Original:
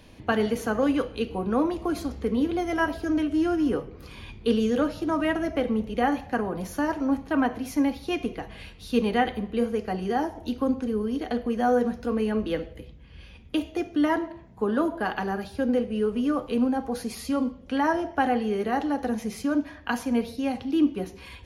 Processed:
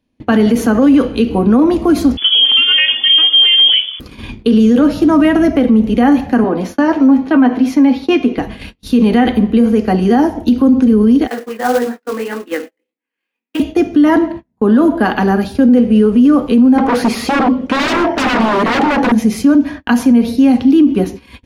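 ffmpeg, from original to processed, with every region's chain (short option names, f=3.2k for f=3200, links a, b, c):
-filter_complex "[0:a]asettb=1/sr,asplit=3[a][b][c];[a]atrim=end=2.174[d];[b]atrim=start=2.17:end=4,asetpts=PTS-STARTPTS,afade=t=in:d=0.004:c=qsin,afade=t=out:st=1.826:d=0.004:c=qsin,equalizer=f=560:t=o:w=1.8:g=6.5,lowpass=f=3k:t=q:w=0.5098,lowpass=f=3k:t=q:w=0.6013,lowpass=f=3k:t=q:w=0.9,lowpass=f=3k:t=q:w=2.563,afreqshift=-3500[e];[c]atrim=start=3.996[f];[d][e]acrossfade=d=0.004:c1=hsin:c2=qsin[g];[g][f]acrossfade=d=0.004:c1=qsin:c2=hsin,asettb=1/sr,asplit=3[h][i][j];[h]atrim=end=6.444[k];[i]atrim=start=6.44:end=8.38,asetpts=PTS-STARTPTS,afade=t=in:d=0.004:c=qsin,afade=t=out:st=1.936:d=0.004:c=qsin,acrossover=split=220 5500:gain=0.224 1 0.224[l][m][n];[l][m][n]amix=inputs=3:normalize=0,asplit=2[o][p];[p]adelay=12,volume=-9dB[q];[o][q]amix=inputs=2:normalize=0,atrim=end_sample=85554[r];[j]atrim=start=8.376[s];[k][r]acrossfade=d=0.004:c1=hsin:c2=qsin[t];[t][s]acrossfade=d=0.004:c1=qsin:c2=hsin,asettb=1/sr,asplit=3[u][v][w];[u]atrim=end=11.274[x];[v]atrim=start=11.27:end=13.6,asetpts=PTS-STARTPTS,afade=t=in:d=0.004:c=qsin,afade=t=out:st=2.326:d=0.004:c=qsin,highpass=f=380:w=0.5412,highpass=f=380:w=1.3066,equalizer=f=390:t=q:w=4:g=-6,equalizer=f=620:t=q:w=4:g=-9,equalizer=f=1.9k:t=q:w=4:g=5,equalizer=f=3.4k:t=q:w=4:g=-8,lowpass=f=4k:w=0.5412,lowpass=f=4k:w=1.3066,flanger=delay=16.5:depth=7:speed=1.7,acrusher=bits=3:mode=log:mix=0:aa=0.000001[y];[w]atrim=start=13.596[z];[x][y]acrossfade=d=0.004:c1=hsin:c2=qsin[aa];[aa][z]acrossfade=d=0.004:c1=qsin:c2=hsin,asettb=1/sr,asplit=3[ab][ac][ad];[ab]atrim=end=16.784[ae];[ac]atrim=start=16.78:end=19.12,asetpts=PTS-STARTPTS,afade=t=in:d=0.004:c=qsin,afade=t=out:st=2.336:d=0.004:c=qsin,aeval=exprs='0.0355*(abs(mod(val(0)/0.0355+3,4)-2)-1)':c=same,asplit=2[af][ag];[ag]highpass=f=720:p=1,volume=21dB,asoftclip=type=tanh:threshold=-18dB[ah];[af][ah]amix=inputs=2:normalize=0,lowpass=f=1.4k:p=1,volume=-6dB[ai];[ad]atrim=start=19.116[aj];[ae][ai]acrossfade=d=0.004:c1=hsin:c2=qsin[ak];[ak][aj]acrossfade=d=0.004:c1=qsin:c2=hsin,agate=range=-35dB:threshold=-41dB:ratio=16:detection=peak,equalizer=f=250:w=2:g=11,alimiter=level_in=15.5dB:limit=-1dB:release=50:level=0:latency=1,volume=-2dB"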